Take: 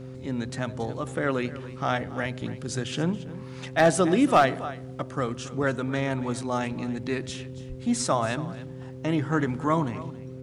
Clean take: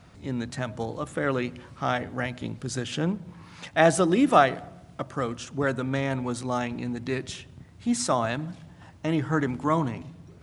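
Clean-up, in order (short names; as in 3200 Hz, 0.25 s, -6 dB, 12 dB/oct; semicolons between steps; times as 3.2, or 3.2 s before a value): clip repair -10.5 dBFS; de-hum 129.5 Hz, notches 4; de-plosive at 7.68; inverse comb 0.277 s -16.5 dB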